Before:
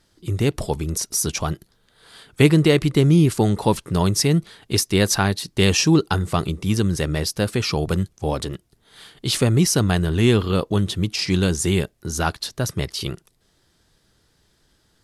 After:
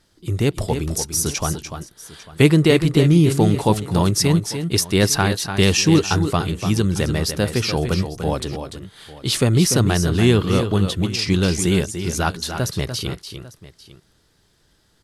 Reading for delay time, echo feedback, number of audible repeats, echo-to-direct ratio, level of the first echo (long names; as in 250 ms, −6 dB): 294 ms, repeats not evenly spaced, 2, −8.0 dB, −8.5 dB